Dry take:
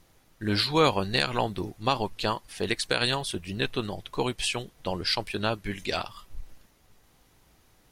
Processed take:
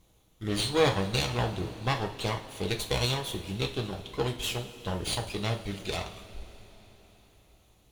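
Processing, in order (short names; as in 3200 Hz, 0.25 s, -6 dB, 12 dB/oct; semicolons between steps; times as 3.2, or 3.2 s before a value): minimum comb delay 0.3 ms; bell 63 Hz +9 dB 0.32 oct; two-slope reverb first 0.33 s, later 4.5 s, from -19 dB, DRR 3 dB; gain -4 dB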